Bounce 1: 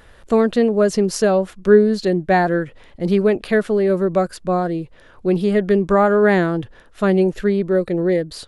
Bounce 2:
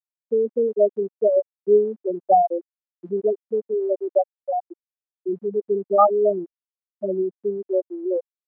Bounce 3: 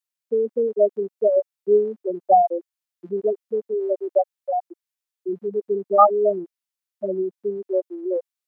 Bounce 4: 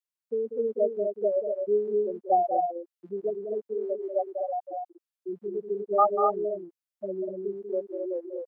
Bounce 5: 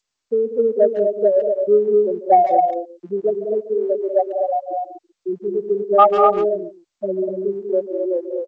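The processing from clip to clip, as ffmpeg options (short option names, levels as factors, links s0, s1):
-af "afftfilt=real='re*gte(hypot(re,im),1)':imag='im*gte(hypot(re,im),1)':win_size=1024:overlap=0.75,highpass=790,volume=2.37"
-af "tiltshelf=f=970:g=-5,volume=1.33"
-af "aecho=1:1:192.4|244.9:0.398|0.562,volume=0.398"
-filter_complex "[0:a]asplit=2[s0][s1];[s1]adelay=140,highpass=300,lowpass=3400,asoftclip=type=hard:threshold=0.119,volume=0.2[s2];[s0][s2]amix=inputs=2:normalize=0,acontrast=75,volume=1.5" -ar 16000 -c:a g722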